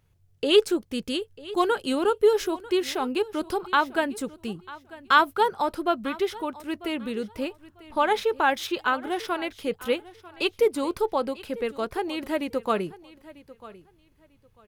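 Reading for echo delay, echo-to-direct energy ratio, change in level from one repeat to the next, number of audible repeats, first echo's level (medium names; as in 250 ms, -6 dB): 945 ms, -19.0 dB, -13.5 dB, 2, -19.0 dB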